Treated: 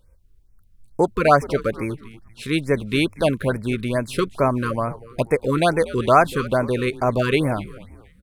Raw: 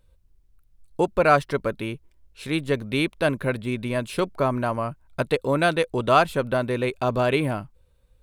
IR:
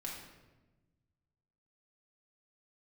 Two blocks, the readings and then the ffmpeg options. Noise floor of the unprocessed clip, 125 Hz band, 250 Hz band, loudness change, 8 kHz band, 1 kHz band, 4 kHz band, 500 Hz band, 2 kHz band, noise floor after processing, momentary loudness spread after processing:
-61 dBFS, +3.5 dB, +3.5 dB, +3.0 dB, +3.5 dB, +3.0 dB, +2.0 dB, +3.0 dB, +1.0 dB, -56 dBFS, 12 LU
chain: -filter_complex "[0:a]asplit=4[a][b][c][d];[b]adelay=240,afreqshift=-110,volume=-17dB[e];[c]adelay=480,afreqshift=-220,volume=-25.6dB[f];[d]adelay=720,afreqshift=-330,volume=-34.3dB[g];[a][e][f][g]amix=inputs=4:normalize=0,afftfilt=real='re*(1-between(b*sr/1024,690*pow(3700/690,0.5+0.5*sin(2*PI*2.3*pts/sr))/1.41,690*pow(3700/690,0.5+0.5*sin(2*PI*2.3*pts/sr))*1.41))':imag='im*(1-between(b*sr/1024,690*pow(3700/690,0.5+0.5*sin(2*PI*2.3*pts/sr))/1.41,690*pow(3700/690,0.5+0.5*sin(2*PI*2.3*pts/sr))*1.41))':win_size=1024:overlap=0.75,volume=3.5dB"

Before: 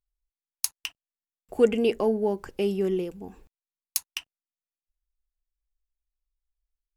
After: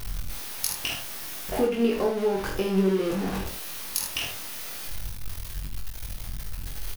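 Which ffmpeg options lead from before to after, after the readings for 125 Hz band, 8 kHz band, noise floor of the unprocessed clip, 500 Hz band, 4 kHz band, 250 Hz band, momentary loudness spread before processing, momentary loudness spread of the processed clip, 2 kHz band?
+7.5 dB, +3.0 dB, under -85 dBFS, -1.0 dB, +5.5 dB, +2.5 dB, 16 LU, 13 LU, +6.0 dB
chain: -filter_complex "[0:a]aeval=exprs='val(0)+0.5*0.0398*sgn(val(0))':c=same,equalizer=f=7.5k:w=4.7:g=-7,acompressor=threshold=-24dB:ratio=6,asplit=2[a][b];[b]adelay=21,volume=-2.5dB[c];[a][c]amix=inputs=2:normalize=0,asplit=2[d][e];[e]aecho=0:1:47|78:0.447|0.398[f];[d][f]amix=inputs=2:normalize=0"

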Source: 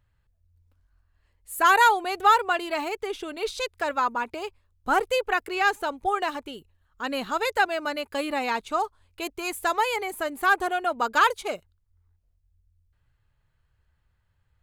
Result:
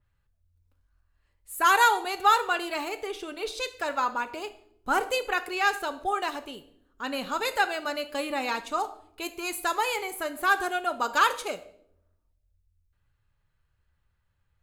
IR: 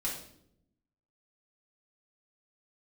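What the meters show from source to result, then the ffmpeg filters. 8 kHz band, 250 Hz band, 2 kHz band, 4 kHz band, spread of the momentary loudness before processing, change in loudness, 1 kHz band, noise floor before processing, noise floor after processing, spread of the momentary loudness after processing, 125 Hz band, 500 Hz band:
+1.5 dB, -2.5 dB, -2.0 dB, 0.0 dB, 15 LU, -2.0 dB, -2.5 dB, -70 dBFS, -73 dBFS, 15 LU, n/a, -3.5 dB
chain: -filter_complex "[0:a]asplit=2[a][b];[1:a]atrim=start_sample=2205,lowshelf=f=210:g=-9[c];[b][c]afir=irnorm=-1:irlink=0,volume=-9.5dB[d];[a][d]amix=inputs=2:normalize=0,adynamicequalizer=threshold=0.0251:dfrequency=3300:dqfactor=0.7:tfrequency=3300:tqfactor=0.7:attack=5:release=100:ratio=0.375:range=2.5:mode=boostabove:tftype=highshelf,volume=-4.5dB"

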